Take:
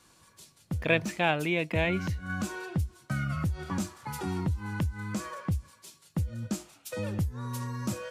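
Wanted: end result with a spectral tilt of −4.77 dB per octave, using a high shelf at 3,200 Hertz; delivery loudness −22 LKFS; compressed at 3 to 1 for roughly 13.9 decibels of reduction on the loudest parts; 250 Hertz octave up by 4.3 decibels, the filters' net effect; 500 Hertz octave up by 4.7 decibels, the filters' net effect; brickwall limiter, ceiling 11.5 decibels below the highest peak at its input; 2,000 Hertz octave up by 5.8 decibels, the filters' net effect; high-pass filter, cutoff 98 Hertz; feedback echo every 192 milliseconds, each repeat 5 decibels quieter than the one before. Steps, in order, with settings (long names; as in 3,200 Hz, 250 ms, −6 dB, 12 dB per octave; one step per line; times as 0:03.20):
high-pass filter 98 Hz
parametric band 250 Hz +5.5 dB
parametric band 500 Hz +4 dB
parametric band 2,000 Hz +4.5 dB
high-shelf EQ 3,200 Hz +7.5 dB
downward compressor 3 to 1, threshold −33 dBFS
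brickwall limiter −28.5 dBFS
repeating echo 192 ms, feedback 56%, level −5 dB
level +15.5 dB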